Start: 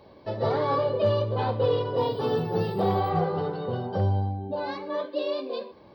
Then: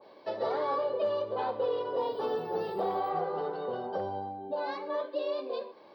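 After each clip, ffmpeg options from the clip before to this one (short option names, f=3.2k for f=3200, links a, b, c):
-af "highpass=400,acompressor=threshold=-30dB:ratio=2,adynamicequalizer=threshold=0.00398:dfrequency=1800:dqfactor=0.7:tfrequency=1800:tqfactor=0.7:attack=5:release=100:ratio=0.375:range=3:mode=cutabove:tftype=highshelf"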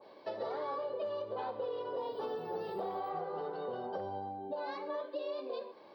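-af "acompressor=threshold=-35dB:ratio=3,volume=-1.5dB"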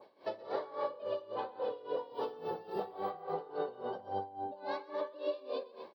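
-filter_complex "[0:a]asplit=2[a][b];[b]aecho=0:1:125|232:0.708|0.299[c];[a][c]amix=inputs=2:normalize=0,aeval=exprs='val(0)*pow(10,-18*(0.5-0.5*cos(2*PI*3.6*n/s))/20)':c=same,volume=2.5dB"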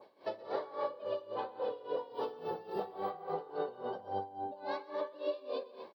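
-af "aecho=1:1:201:0.0794"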